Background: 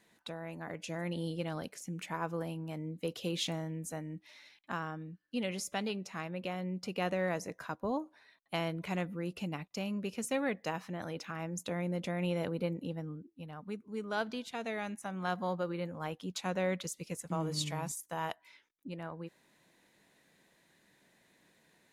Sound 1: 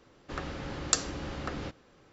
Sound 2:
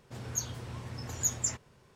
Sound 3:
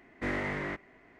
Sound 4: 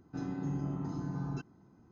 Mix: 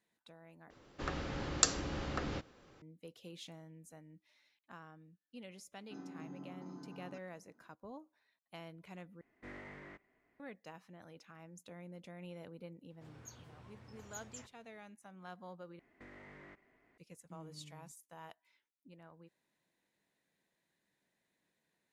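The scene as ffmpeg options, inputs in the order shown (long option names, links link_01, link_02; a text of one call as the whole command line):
ffmpeg -i bed.wav -i cue0.wav -i cue1.wav -i cue2.wav -i cue3.wav -filter_complex "[3:a]asplit=2[link_01][link_02];[0:a]volume=-15.5dB[link_03];[4:a]highpass=frequency=200:width=0.5412,highpass=frequency=200:width=1.3066[link_04];[2:a]bass=frequency=250:gain=-4,treble=frequency=4000:gain=-8[link_05];[link_02]acompressor=threshold=-39dB:ratio=6:attack=3.2:release=140:knee=1:detection=peak[link_06];[link_03]asplit=4[link_07][link_08][link_09][link_10];[link_07]atrim=end=0.704[link_11];[1:a]atrim=end=2.12,asetpts=PTS-STARTPTS,volume=-2dB[link_12];[link_08]atrim=start=2.816:end=9.214[link_13];[link_01]atrim=end=1.19,asetpts=PTS-STARTPTS,volume=-17.5dB[link_14];[link_09]atrim=start=10.396:end=15.794[link_15];[link_06]atrim=end=1.19,asetpts=PTS-STARTPTS,volume=-13dB[link_16];[link_10]atrim=start=16.976[link_17];[link_04]atrim=end=1.91,asetpts=PTS-STARTPTS,volume=-10dB,afade=type=in:duration=0.004:curve=hsin,afade=type=out:start_time=1.906:duration=0.004:curve=hsin,adelay=254457S[link_18];[link_05]atrim=end=1.95,asetpts=PTS-STARTPTS,volume=-13.5dB,afade=type=in:duration=0.004:curve=hsin,afade=type=out:start_time=1.946:duration=0.004:curve=hsin,adelay=12900[link_19];[link_11][link_12]acrossfade=duration=0.004:curve1=hsin:curve2=hsin[link_20];[link_20][link_13]acrossfade=duration=0.004:curve1=hsin:curve2=hsin[link_21];[link_21][link_14]acrossfade=duration=0.004:curve1=hsin:curve2=hsin[link_22];[link_22][link_15]acrossfade=duration=0.004:curve1=hsin:curve2=hsin[link_23];[link_23][link_16]acrossfade=duration=0.004:curve1=hsin:curve2=hsin[link_24];[link_24][link_17]acrossfade=duration=0.004:curve1=hsin:curve2=hsin[link_25];[link_25][link_18][link_19]amix=inputs=3:normalize=0" out.wav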